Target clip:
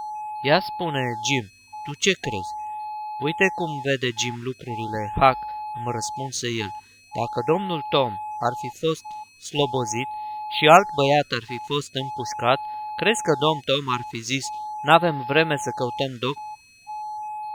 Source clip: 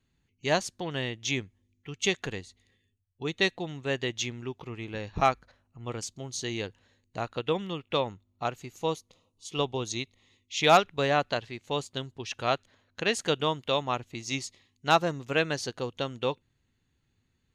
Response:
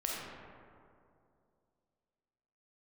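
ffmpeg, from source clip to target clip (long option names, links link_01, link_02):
-af "aeval=exprs='val(0)+0.0178*sin(2*PI*850*n/s)':channel_layout=same,aeval=exprs='sgn(val(0))*max(abs(val(0))-0.00237,0)':channel_layout=same,afftfilt=real='re*(1-between(b*sr/1024,590*pow(7700/590,0.5+0.5*sin(2*PI*0.41*pts/sr))/1.41,590*pow(7700/590,0.5+0.5*sin(2*PI*0.41*pts/sr))*1.41))':imag='im*(1-between(b*sr/1024,590*pow(7700/590,0.5+0.5*sin(2*PI*0.41*pts/sr))/1.41,590*pow(7700/590,0.5+0.5*sin(2*PI*0.41*pts/sr))*1.41))':win_size=1024:overlap=0.75,volume=7.5dB"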